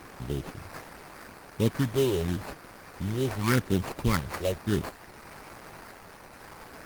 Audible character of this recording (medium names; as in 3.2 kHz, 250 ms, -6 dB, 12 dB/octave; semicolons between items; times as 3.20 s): a quantiser's noise floor 8-bit, dither triangular; phasing stages 4, 0.85 Hz, lowest notch 210–2100 Hz; aliases and images of a low sample rate 3.4 kHz, jitter 20%; Opus